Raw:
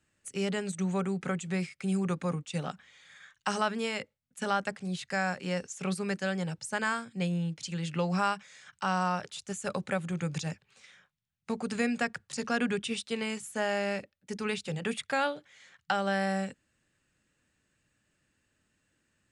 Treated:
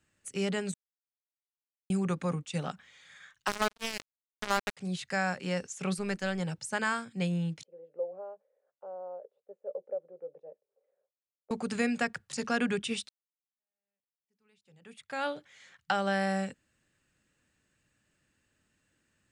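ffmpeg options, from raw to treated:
-filter_complex "[0:a]asettb=1/sr,asplit=3[s0][s1][s2];[s0]atrim=end=3.474[s3];[s1]atrim=start=3.47:end=4.77,asetpts=PTS-STARTPTS,afade=t=in:d=0.004:c=qsin,afade=t=out:st=1.296:d=0.004:c=qsin,acrusher=bits=3:mix=0:aa=0.5[s4];[s2]atrim=start=4.766[s5];[s3][s4]acrossfade=d=0.004:c1=hsin:c2=qsin[s6];[s6][s5]acrossfade=d=0.004:c1=qsin:c2=hsin,asettb=1/sr,asplit=3[s7][s8][s9];[s7]atrim=end=5.984[s10];[s8]atrim=start=5.98:end=6.4,asetpts=PTS-STARTPTS,afade=t=in:d=0.004:c=qsin,afade=t=out:st=0.416:d=0.004:c=qsin,aeval=exprs='if(lt(val(0),0),0.708*val(0),val(0))':c=same[s11];[s9]atrim=start=6.396[s12];[s10][s11]acrossfade=d=0.004:c1=hsin:c2=qsin[s13];[s13][s12]acrossfade=d=0.004:c1=qsin:c2=hsin,asettb=1/sr,asplit=3[s14][s15][s16];[s14]atrim=end=7.634[s17];[s15]atrim=start=7.63:end=11.51,asetpts=PTS-STARTPTS,afade=t=in:d=0.004:c=qsin,afade=t=out:st=3.876:d=0.004:c=qsin,asuperpass=centerf=520:order=4:qfactor=3.1[s18];[s16]atrim=start=11.506[s19];[s17][s18]acrossfade=d=0.004:c1=hsin:c2=qsin[s20];[s20][s19]acrossfade=d=0.004:c1=qsin:c2=hsin,asplit=4[s21][s22][s23][s24];[s21]atrim=end=0.74,asetpts=PTS-STARTPTS,afade=t=out:st=0.736:d=0.004:c=hsin[s25];[s22]atrim=start=0.74:end=1.9,asetpts=PTS-STARTPTS,volume=0[s26];[s23]atrim=start=1.9:end=13.09,asetpts=PTS-STARTPTS,afade=t=in:d=0.004:c=hsin,afade=t=out:st=11.186:d=0.004:c=hsin[s27];[s24]atrim=start=13.09,asetpts=PTS-STARTPTS,afade=t=in:d=2.23:c=exp[s28];[s25][s26][s27][s28]concat=n=4:v=0:a=1"

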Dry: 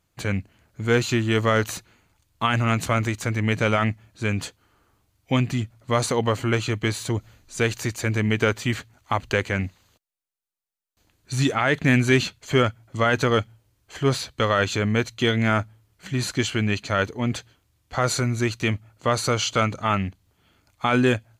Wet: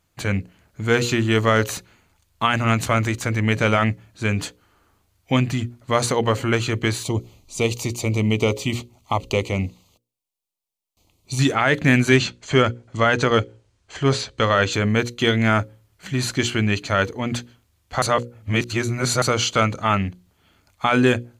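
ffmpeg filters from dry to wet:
-filter_complex "[0:a]asettb=1/sr,asplit=3[s0][s1][s2];[s0]atrim=end=7.034[s3];[s1]atrim=start=7.03:end=11.39,asetpts=PTS-STARTPTS,afade=t=in:d=0.004:c=qsin,afade=t=out:st=4.356:d=0.004:c=qsin,asuperstop=centerf=1600:order=4:qfactor=1.5[s4];[s2]atrim=start=11.386[s5];[s3][s4]acrossfade=d=0.004:c1=hsin:c2=qsin[s6];[s6][s5]acrossfade=d=0.004:c1=qsin:c2=hsin,asettb=1/sr,asplit=3[s7][s8][s9];[s7]atrim=end=12.164[s10];[s8]atrim=start=12.16:end=14.73,asetpts=PTS-STARTPTS,afade=t=in:d=0.004:c=qsin,afade=t=out:st=2.566:d=0.004:c=qsin,lowpass=f=8300:w=0.5412,lowpass=f=8300:w=1.3066[s11];[s9]atrim=start=14.726[s12];[s10][s11]acrossfade=d=0.004:c1=hsin:c2=qsin[s13];[s13][s12]acrossfade=d=0.004:c1=qsin:c2=hsin,asplit=3[s14][s15][s16];[s14]atrim=end=18.022[s17];[s15]atrim=start=18.018:end=19.222,asetpts=PTS-STARTPTS,areverse[s18];[s16]atrim=start=19.218[s19];[s17][s18]acrossfade=d=0.004:c1=hsin:c2=hsin[s20];[s20][s19]acrossfade=d=0.004:c1=hsin:c2=hsin,bandreject=f=60:t=h:w=6,bandreject=f=120:t=h:w=6,bandreject=f=180:t=h:w=6,bandreject=f=240:t=h:w=6,bandreject=f=300:t=h:w=6,bandreject=f=360:t=h:w=6,bandreject=f=420:t=h:w=6,bandreject=f=480:t=h:w=6,bandreject=f=540:t=h:w=6,volume=1.41"

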